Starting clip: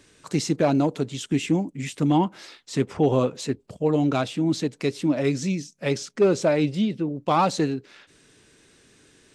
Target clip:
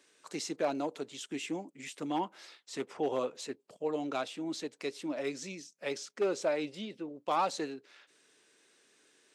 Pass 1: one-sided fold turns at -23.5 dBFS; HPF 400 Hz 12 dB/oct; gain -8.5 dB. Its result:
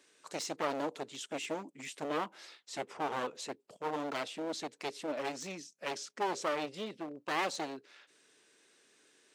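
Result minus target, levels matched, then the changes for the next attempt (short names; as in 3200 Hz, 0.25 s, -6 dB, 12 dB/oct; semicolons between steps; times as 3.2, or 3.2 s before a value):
one-sided fold: distortion +32 dB
change: one-sided fold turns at -12 dBFS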